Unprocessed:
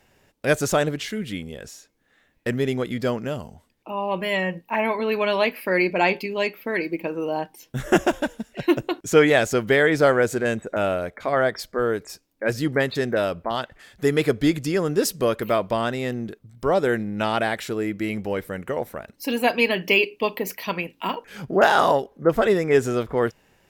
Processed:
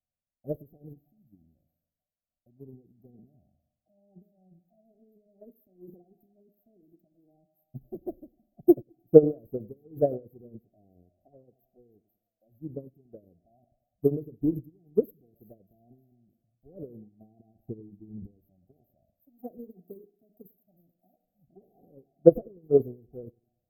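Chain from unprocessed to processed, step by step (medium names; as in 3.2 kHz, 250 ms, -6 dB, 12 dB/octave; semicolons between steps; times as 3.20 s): 11.44–12.55 s: bass shelf 310 Hz -4 dB; Schroeder reverb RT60 0.59 s, combs from 26 ms, DRR 18.5 dB; tremolo 2.2 Hz, depth 56%; 17.55–18.31 s: tilt EQ -2.5 dB/octave; transient shaper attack +7 dB, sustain +11 dB; brick-wall FIR band-stop 770–12000 Hz; two-band feedback delay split 930 Hz, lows 98 ms, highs 312 ms, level -13.5 dB; touch-sensitive phaser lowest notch 390 Hz, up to 1.4 kHz, full sweep at -8.5 dBFS; upward expansion 2.5:1, over -30 dBFS; trim +1.5 dB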